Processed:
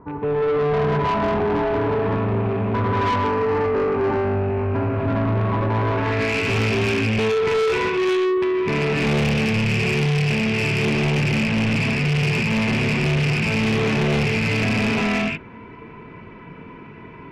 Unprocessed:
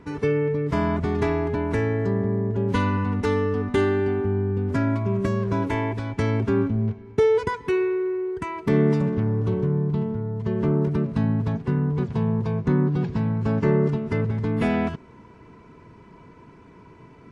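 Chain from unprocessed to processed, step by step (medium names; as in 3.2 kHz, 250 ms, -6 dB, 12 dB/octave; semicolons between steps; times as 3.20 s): rattle on loud lows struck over -31 dBFS, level -20 dBFS; gated-style reverb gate 430 ms rising, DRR -6.5 dB; low-pass sweep 1 kHz -> 2.5 kHz, 5.81–6.38 s; saturation -17.5 dBFS, distortion -8 dB; 3.28–4.98 s: peaking EQ 3.5 kHz -9 dB 0.27 oct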